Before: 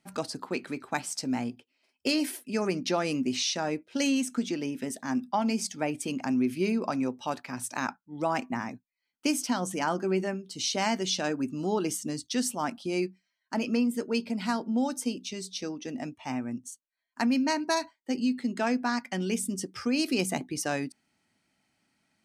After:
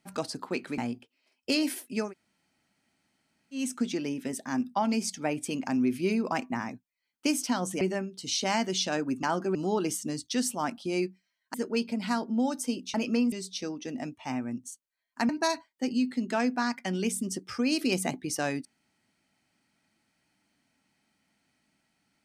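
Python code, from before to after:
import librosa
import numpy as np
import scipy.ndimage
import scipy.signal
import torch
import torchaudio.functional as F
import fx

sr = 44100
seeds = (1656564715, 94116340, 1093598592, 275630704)

y = fx.edit(x, sr, fx.cut(start_s=0.78, length_s=0.57),
    fx.room_tone_fill(start_s=2.63, length_s=1.53, crossfade_s=0.16),
    fx.cut(start_s=6.89, length_s=1.43),
    fx.move(start_s=9.81, length_s=0.32, to_s=11.55),
    fx.move(start_s=13.54, length_s=0.38, to_s=15.32),
    fx.cut(start_s=17.29, length_s=0.27), tone=tone)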